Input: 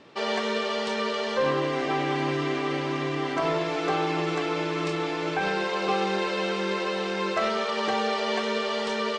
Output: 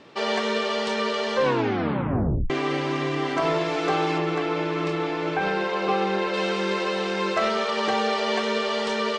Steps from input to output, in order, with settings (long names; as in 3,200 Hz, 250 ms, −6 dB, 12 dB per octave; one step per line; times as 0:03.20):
0:01.43: tape stop 1.07 s
0:04.18–0:06.34: high-shelf EQ 4,900 Hz −12 dB
level +2.5 dB